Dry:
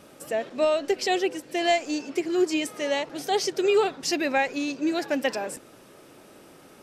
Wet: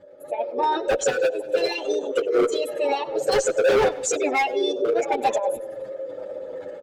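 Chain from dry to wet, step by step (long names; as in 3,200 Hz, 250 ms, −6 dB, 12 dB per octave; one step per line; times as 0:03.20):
spectral envelope exaggerated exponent 2
comb filter 2.3 ms, depth 36%
automatic gain control gain up to 13.5 dB
parametric band 400 Hz +11.5 dB 0.37 octaves
notch filter 710 Hz, Q 12
formants moved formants +5 semitones
low-pass filter 8,100 Hz 12 dB per octave
hard clipping −6.5 dBFS, distortion −4 dB
repeating echo 97 ms, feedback 44%, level −22 dB
downward compressor 3 to 1, threshold −18 dBFS, peak gain reduction 8 dB
barber-pole flanger 7.9 ms −0.45 Hz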